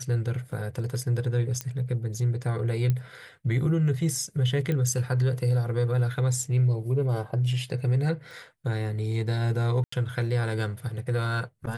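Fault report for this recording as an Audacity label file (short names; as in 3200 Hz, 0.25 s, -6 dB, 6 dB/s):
0.520000	0.520000	gap 3.5 ms
1.610000	1.610000	pop -14 dBFS
2.900000	2.900000	pop -15 dBFS
4.720000	4.720000	pop -18 dBFS
8.310000	8.310000	pop
9.840000	9.920000	gap 84 ms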